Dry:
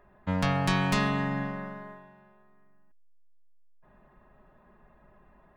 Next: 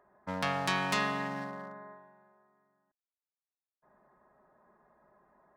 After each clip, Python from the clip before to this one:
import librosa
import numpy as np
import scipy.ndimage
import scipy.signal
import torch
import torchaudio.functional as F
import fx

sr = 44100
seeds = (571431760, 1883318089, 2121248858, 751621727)

y = fx.wiener(x, sr, points=15)
y = fx.highpass(y, sr, hz=600.0, slope=6)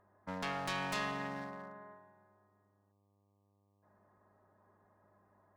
y = fx.tube_stage(x, sr, drive_db=27.0, bias=0.45)
y = fx.dmg_buzz(y, sr, base_hz=100.0, harmonics=12, level_db=-72.0, tilt_db=-5, odd_only=False)
y = F.gain(torch.from_numpy(y), -3.0).numpy()